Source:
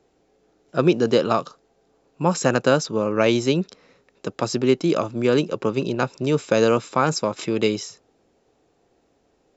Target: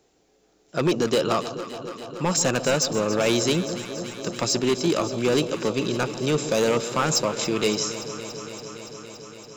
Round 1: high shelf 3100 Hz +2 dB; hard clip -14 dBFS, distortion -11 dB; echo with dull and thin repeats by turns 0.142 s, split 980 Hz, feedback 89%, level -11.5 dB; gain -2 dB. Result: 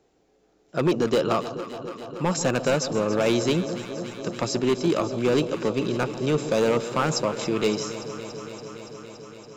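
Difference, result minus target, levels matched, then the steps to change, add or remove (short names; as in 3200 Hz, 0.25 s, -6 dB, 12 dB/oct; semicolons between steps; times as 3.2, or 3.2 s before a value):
8000 Hz band -6.0 dB
change: high shelf 3100 Hz +11.5 dB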